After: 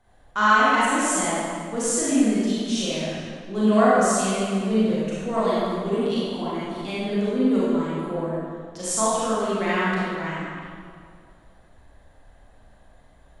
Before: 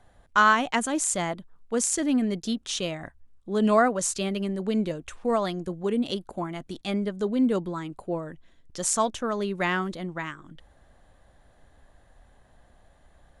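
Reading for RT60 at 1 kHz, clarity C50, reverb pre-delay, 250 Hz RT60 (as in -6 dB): 2.1 s, -5.5 dB, 28 ms, 2.3 s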